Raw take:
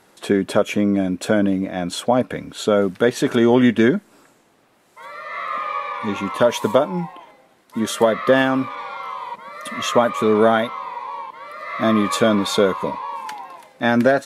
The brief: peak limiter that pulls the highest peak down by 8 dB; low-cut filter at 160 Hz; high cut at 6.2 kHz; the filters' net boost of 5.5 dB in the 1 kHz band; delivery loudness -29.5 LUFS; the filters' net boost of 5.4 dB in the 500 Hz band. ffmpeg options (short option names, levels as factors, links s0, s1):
-af "highpass=160,lowpass=6200,equalizer=f=500:t=o:g=5,equalizer=f=1000:t=o:g=5.5,volume=0.282,alimiter=limit=0.15:level=0:latency=1"